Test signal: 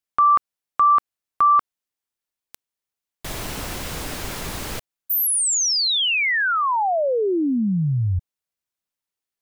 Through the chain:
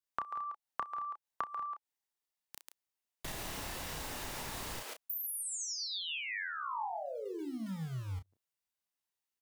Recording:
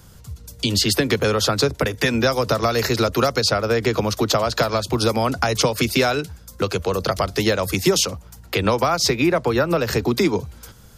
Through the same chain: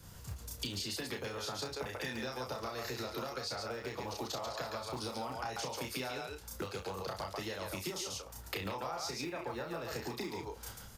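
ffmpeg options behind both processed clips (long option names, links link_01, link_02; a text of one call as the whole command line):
ffmpeg -i in.wav -filter_complex "[0:a]acrossover=split=330[link_01][link_02];[link_01]acrusher=bits=3:mode=log:mix=0:aa=0.000001[link_03];[link_02]aecho=1:1:32.07|139.9:0.891|0.708[link_04];[link_03][link_04]amix=inputs=2:normalize=0,adynamicequalizer=threshold=0.00891:dfrequency=850:dqfactor=7.9:tfrequency=850:tqfactor=7.9:attack=5:release=100:ratio=0.375:range=3.5:mode=boostabove:tftype=bell,acompressor=threshold=-32dB:ratio=5:attack=17:release=291:knee=1:detection=peak,asplit=2[link_05][link_06];[link_06]adelay=31,volume=-7.5dB[link_07];[link_05][link_07]amix=inputs=2:normalize=0,volume=-8dB" out.wav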